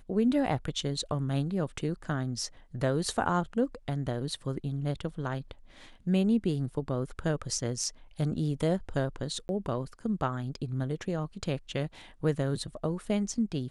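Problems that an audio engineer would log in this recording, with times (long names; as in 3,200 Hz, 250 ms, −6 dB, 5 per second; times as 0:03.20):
0:09.48–0:09.49: drop-out 11 ms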